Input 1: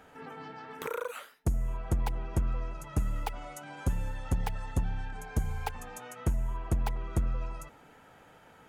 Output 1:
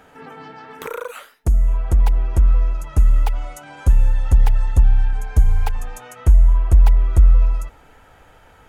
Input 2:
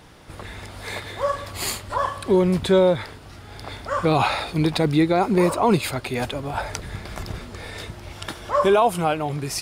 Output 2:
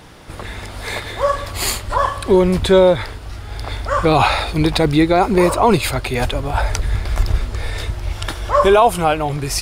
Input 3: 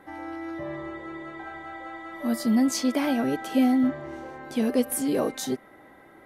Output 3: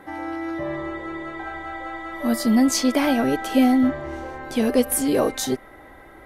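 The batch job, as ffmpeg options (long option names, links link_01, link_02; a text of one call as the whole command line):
ffmpeg -i in.wav -af "asubboost=boost=8:cutoff=61,volume=6.5dB" out.wav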